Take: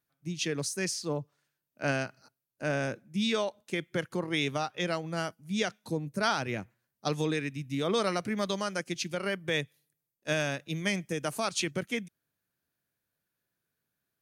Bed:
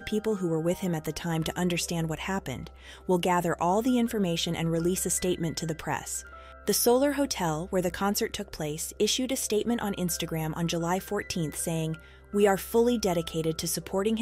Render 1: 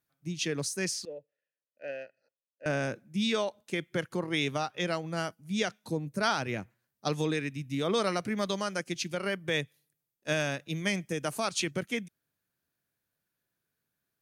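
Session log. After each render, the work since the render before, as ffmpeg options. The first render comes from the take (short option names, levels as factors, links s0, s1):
-filter_complex "[0:a]asettb=1/sr,asplit=3[s0][s1][s2];[s0]atrim=end=1.054[s3];[s1]atrim=start=1.05:end=2.66,asetpts=PTS-STARTPTS,afade=t=in:d=0.004:c=qsin,afade=t=out:st=1.606:d=0.004:c=qsin,asplit=3[s4][s5][s6];[s4]bandpass=f=530:t=q:w=8,volume=1[s7];[s5]bandpass=f=1840:t=q:w=8,volume=0.501[s8];[s6]bandpass=f=2480:t=q:w=8,volume=0.355[s9];[s7][s8][s9]amix=inputs=3:normalize=0[s10];[s2]atrim=start=2.656[s11];[s3][s10]acrossfade=d=0.004:c1=hsin:c2=qsin[s12];[s12][s11]acrossfade=d=0.004:c1=qsin:c2=hsin"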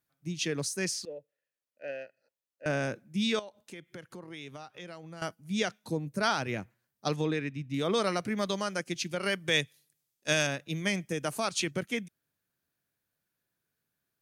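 -filter_complex "[0:a]asettb=1/sr,asplit=3[s0][s1][s2];[s0]atrim=end=3.394[s3];[s1]atrim=start=3.39:end=5.22,asetpts=PTS-STARTPTS,afade=t=in:d=0.004:c=qsin,afade=t=out:st=1.826:d=0.004:c=qsin,acompressor=threshold=0.00447:ratio=2.5:attack=3.2:release=140:knee=1:detection=peak[s4];[s2]atrim=start=5.216[s5];[s3][s4]acrossfade=d=0.004:c1=hsin:c2=qsin[s6];[s6][s5]acrossfade=d=0.004:c1=qsin:c2=hsin,asettb=1/sr,asplit=3[s7][s8][s9];[s7]atrim=end=7.164[s10];[s8]atrim=start=7.16:end=7.74,asetpts=PTS-STARTPTS,afade=t=in:d=0.004:c=qsin,afade=t=out:st=0.576:d=0.004:c=qsin,equalizer=f=12000:w=0.46:g=-14.5[s11];[s9]atrim=start=7.736[s12];[s10][s11]acrossfade=d=0.004:c1=hsin:c2=qsin[s13];[s13][s12]acrossfade=d=0.004:c1=qsin:c2=hsin,asettb=1/sr,asplit=3[s14][s15][s16];[s14]atrim=end=9.214[s17];[s15]atrim=start=9.21:end=10.47,asetpts=PTS-STARTPTS,afade=t=in:d=0.004:c=qsin,afade=t=out:st=1.256:d=0.004:c=qsin,equalizer=f=6300:w=0.41:g=8.5[s18];[s16]atrim=start=10.466[s19];[s17][s18]acrossfade=d=0.004:c1=hsin:c2=qsin[s20];[s20][s19]acrossfade=d=0.004:c1=qsin:c2=hsin"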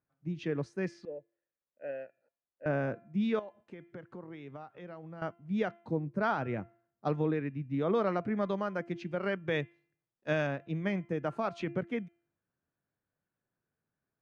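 -af "lowpass=1400,bandreject=f=342.3:t=h:w=4,bandreject=f=684.6:t=h:w=4,bandreject=f=1026.9:t=h:w=4,bandreject=f=1369.2:t=h:w=4,bandreject=f=1711.5:t=h:w=4,bandreject=f=2053.8:t=h:w=4,bandreject=f=2396.1:t=h:w=4,bandreject=f=2738.4:t=h:w=4,bandreject=f=3080.7:t=h:w=4"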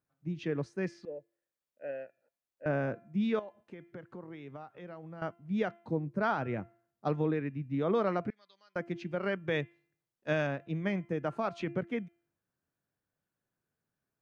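-filter_complex "[0:a]asettb=1/sr,asplit=3[s0][s1][s2];[s0]atrim=end=8.304[s3];[s1]atrim=start=8.3:end=8.76,asetpts=PTS-STARTPTS,afade=t=in:d=0.004:c=qsin,afade=t=out:st=0.456:d=0.004:c=qsin,bandpass=f=4500:t=q:w=6.3[s4];[s2]atrim=start=8.756[s5];[s3][s4]acrossfade=d=0.004:c1=hsin:c2=qsin[s6];[s6][s5]acrossfade=d=0.004:c1=qsin:c2=hsin"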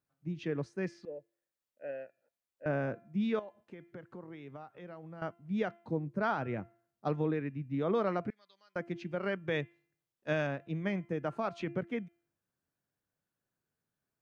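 -af "volume=0.841"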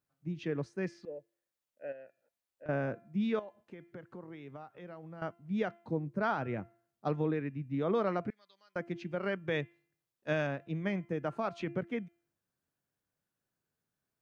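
-filter_complex "[0:a]asettb=1/sr,asplit=3[s0][s1][s2];[s0]atrim=end=1.924[s3];[s1]atrim=start=1.92:end=2.69,asetpts=PTS-STARTPTS,afade=t=in:d=0.004:c=qsin,afade=t=out:st=0.766:d=0.004:c=qsin,acompressor=threshold=0.00501:ratio=6:attack=3.2:release=140:knee=1:detection=peak[s4];[s2]atrim=start=2.686[s5];[s3][s4]acrossfade=d=0.004:c1=hsin:c2=qsin[s6];[s6][s5]acrossfade=d=0.004:c1=qsin:c2=hsin"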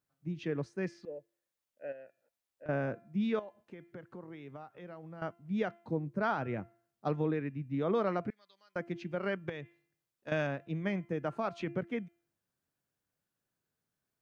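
-filter_complex "[0:a]asettb=1/sr,asplit=3[s0][s1][s2];[s0]atrim=end=9.494[s3];[s1]atrim=start=9.49:end=10.32,asetpts=PTS-STARTPTS,afade=t=in:d=0.004:c=qsin,afade=t=out:st=0.826:d=0.004:c=qsin,acompressor=threshold=0.0141:ratio=10:attack=3.2:release=140:knee=1:detection=peak[s4];[s2]atrim=start=10.316[s5];[s3][s4]acrossfade=d=0.004:c1=hsin:c2=qsin[s6];[s6][s5]acrossfade=d=0.004:c1=qsin:c2=hsin"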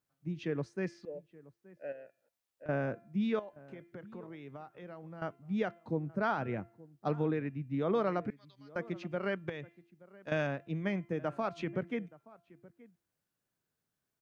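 -filter_complex "[0:a]asplit=2[s0][s1];[s1]adelay=874.6,volume=0.0891,highshelf=f=4000:g=-19.7[s2];[s0][s2]amix=inputs=2:normalize=0"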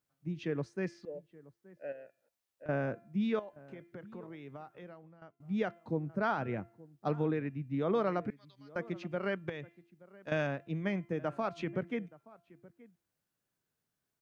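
-filter_complex "[0:a]asettb=1/sr,asplit=3[s0][s1][s2];[s0]atrim=end=1.034[s3];[s1]atrim=start=1.03:end=1.76,asetpts=PTS-STARTPTS,afade=t=in:d=0.004:c=qsin,afade=t=out:st=0.726:d=0.004:c=qsin,bandreject=f=2500:w=12[s4];[s2]atrim=start=1.756[s5];[s3][s4]acrossfade=d=0.004:c1=hsin:c2=qsin[s6];[s6][s5]acrossfade=d=0.004:c1=qsin:c2=hsin,asplit=2[s7][s8];[s7]atrim=end=5.4,asetpts=PTS-STARTPTS,afade=t=out:st=4.8:d=0.6:c=qua:silence=0.105925[s9];[s8]atrim=start=5.4,asetpts=PTS-STARTPTS,afade=t=in:d=0.004:c=hsin:silence=0.105925[s10];[s9][s10]concat=n=2:v=0:a=1"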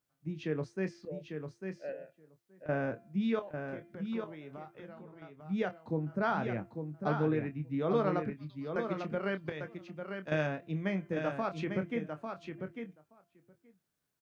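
-filter_complex "[0:a]asplit=2[s0][s1];[s1]adelay=26,volume=0.316[s2];[s0][s2]amix=inputs=2:normalize=0,aecho=1:1:848:0.473"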